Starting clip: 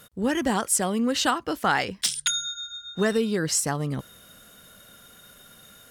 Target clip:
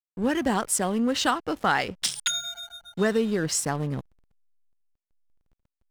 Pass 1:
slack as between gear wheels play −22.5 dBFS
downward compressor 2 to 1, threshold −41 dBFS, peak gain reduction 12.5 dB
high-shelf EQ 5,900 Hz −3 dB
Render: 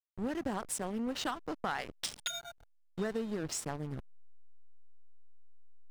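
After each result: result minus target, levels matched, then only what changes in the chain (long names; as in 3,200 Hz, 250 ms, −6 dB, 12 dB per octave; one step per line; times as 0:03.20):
downward compressor: peak gain reduction +12.5 dB; slack as between gear wheels: distortion +10 dB
remove: downward compressor 2 to 1, threshold −41 dBFS, peak gain reduction 12.5 dB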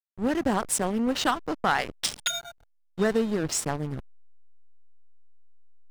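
slack as between gear wheels: distortion +10 dB
change: slack as between gear wheels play −33.5 dBFS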